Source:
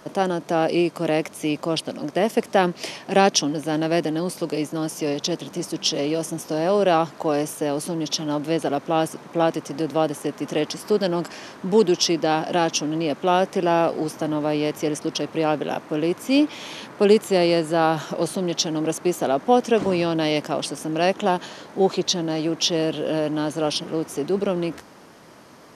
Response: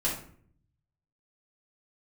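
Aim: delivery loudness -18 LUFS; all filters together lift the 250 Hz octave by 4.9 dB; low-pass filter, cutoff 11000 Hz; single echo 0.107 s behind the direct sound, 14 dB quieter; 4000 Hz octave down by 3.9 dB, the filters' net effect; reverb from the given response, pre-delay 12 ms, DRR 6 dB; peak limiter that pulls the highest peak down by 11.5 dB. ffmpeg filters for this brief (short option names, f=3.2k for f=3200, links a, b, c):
-filter_complex "[0:a]lowpass=11k,equalizer=f=250:t=o:g=7,equalizer=f=4k:t=o:g=-5.5,alimiter=limit=-13.5dB:level=0:latency=1,aecho=1:1:107:0.2,asplit=2[a][b];[1:a]atrim=start_sample=2205,adelay=12[c];[b][c]afir=irnorm=-1:irlink=0,volume=-13.5dB[d];[a][d]amix=inputs=2:normalize=0,volume=4dB"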